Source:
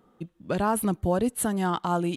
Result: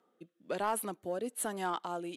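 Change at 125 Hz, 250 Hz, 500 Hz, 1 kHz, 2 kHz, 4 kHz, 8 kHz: -20.0, -15.0, -8.5, -7.5, -6.5, -6.5, -6.5 dB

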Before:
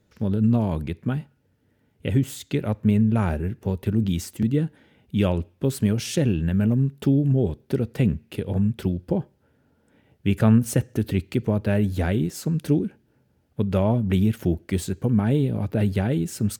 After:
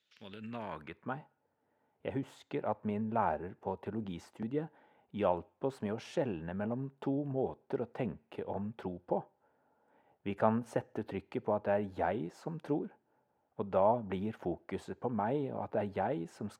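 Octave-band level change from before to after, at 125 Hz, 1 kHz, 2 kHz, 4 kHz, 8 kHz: -21.5 dB, +0.5 dB, -9.5 dB, -16.5 dB, under -20 dB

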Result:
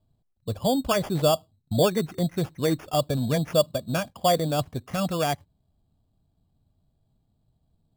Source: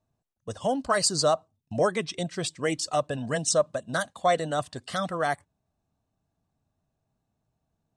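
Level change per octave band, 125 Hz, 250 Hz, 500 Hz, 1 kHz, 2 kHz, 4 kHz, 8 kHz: +8.0, +6.0, +2.0, -0.5, -4.0, +1.0, -5.5 dB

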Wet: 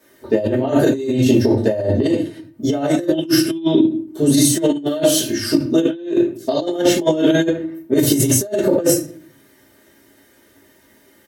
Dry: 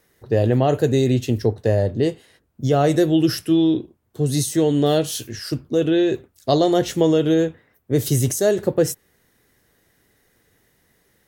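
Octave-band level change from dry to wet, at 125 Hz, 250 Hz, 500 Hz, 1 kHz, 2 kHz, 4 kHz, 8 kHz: -2.0, +4.0, +1.5, -2.5, +4.5, +5.0, +8.0 dB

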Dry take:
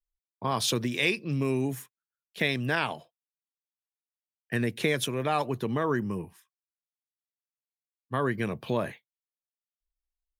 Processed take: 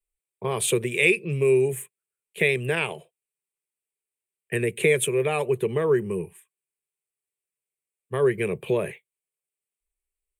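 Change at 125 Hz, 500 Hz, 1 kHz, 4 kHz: +2.0, +9.0, -3.0, -1.5 dB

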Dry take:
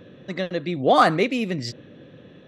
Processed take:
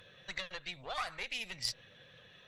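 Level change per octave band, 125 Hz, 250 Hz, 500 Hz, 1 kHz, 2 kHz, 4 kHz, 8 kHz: -25.5, -32.5, -27.0, -22.5, -12.5, -7.0, -3.0 dB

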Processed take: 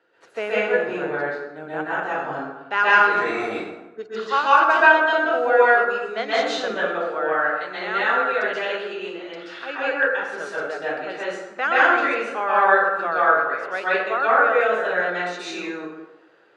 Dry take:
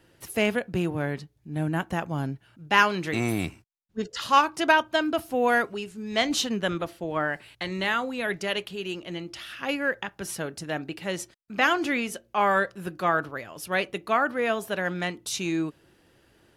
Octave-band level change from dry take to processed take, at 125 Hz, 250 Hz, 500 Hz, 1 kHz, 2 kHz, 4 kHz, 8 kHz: under -10 dB, -3.5 dB, +7.0 dB, +7.0 dB, +8.5 dB, -1.0 dB, n/a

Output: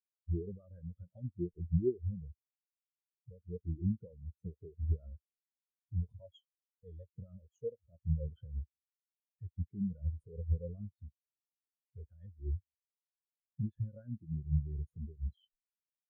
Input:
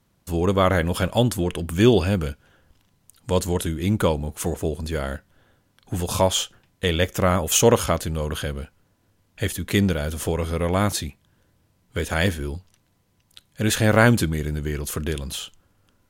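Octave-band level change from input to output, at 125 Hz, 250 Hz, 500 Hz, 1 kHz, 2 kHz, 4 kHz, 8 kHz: -13.5 dB, -18.0 dB, -22.5 dB, under -40 dB, under -40 dB, under -40 dB, under -40 dB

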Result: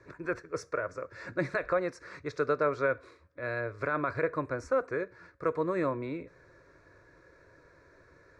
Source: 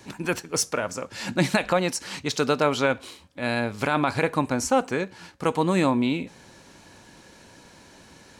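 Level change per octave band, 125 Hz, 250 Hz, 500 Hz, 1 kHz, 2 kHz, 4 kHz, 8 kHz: -10.5 dB, -12.0 dB, -5.0 dB, -8.5 dB, -6.5 dB, under -20 dB, under -20 dB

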